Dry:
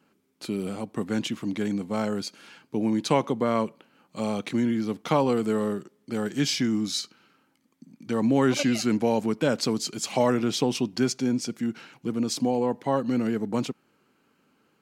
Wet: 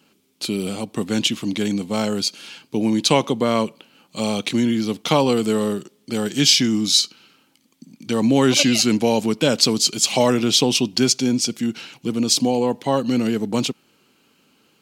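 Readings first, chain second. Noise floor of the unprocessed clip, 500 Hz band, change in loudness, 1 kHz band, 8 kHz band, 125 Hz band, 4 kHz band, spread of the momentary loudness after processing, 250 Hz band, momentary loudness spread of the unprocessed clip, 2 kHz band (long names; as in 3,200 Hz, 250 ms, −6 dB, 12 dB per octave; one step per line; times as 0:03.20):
−68 dBFS, +5.0 dB, +7.5 dB, +4.5 dB, +13.0 dB, +5.5 dB, +14.0 dB, 11 LU, +5.5 dB, 10 LU, +7.0 dB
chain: high shelf with overshoot 2,300 Hz +7 dB, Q 1.5
level +5.5 dB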